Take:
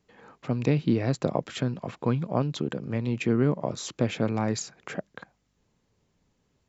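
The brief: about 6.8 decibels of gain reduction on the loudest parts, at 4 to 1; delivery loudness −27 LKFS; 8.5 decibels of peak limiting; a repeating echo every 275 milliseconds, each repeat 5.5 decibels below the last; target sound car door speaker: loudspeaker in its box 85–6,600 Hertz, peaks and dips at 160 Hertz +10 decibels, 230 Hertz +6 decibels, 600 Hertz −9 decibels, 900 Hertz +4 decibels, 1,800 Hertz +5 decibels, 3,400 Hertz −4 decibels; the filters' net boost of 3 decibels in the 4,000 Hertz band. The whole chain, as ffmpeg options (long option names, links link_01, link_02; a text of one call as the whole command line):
ffmpeg -i in.wav -af "equalizer=frequency=4000:width_type=o:gain=6,acompressor=threshold=-26dB:ratio=4,alimiter=limit=-21dB:level=0:latency=1,highpass=85,equalizer=frequency=160:width_type=q:width=4:gain=10,equalizer=frequency=230:width_type=q:width=4:gain=6,equalizer=frequency=600:width_type=q:width=4:gain=-9,equalizer=frequency=900:width_type=q:width=4:gain=4,equalizer=frequency=1800:width_type=q:width=4:gain=5,equalizer=frequency=3400:width_type=q:width=4:gain=-4,lowpass=frequency=6600:width=0.5412,lowpass=frequency=6600:width=1.3066,aecho=1:1:275|550|825|1100|1375|1650|1925:0.531|0.281|0.149|0.079|0.0419|0.0222|0.0118,volume=2dB" out.wav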